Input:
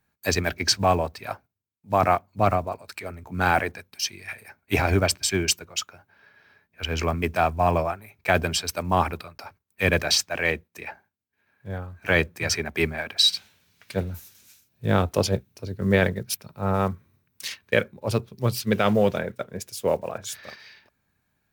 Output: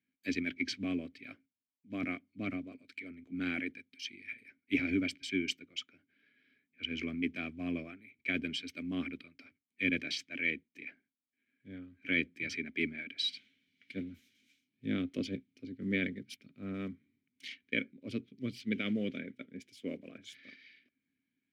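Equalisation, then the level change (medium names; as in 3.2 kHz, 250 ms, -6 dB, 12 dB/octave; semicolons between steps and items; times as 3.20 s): vowel filter i; +2.0 dB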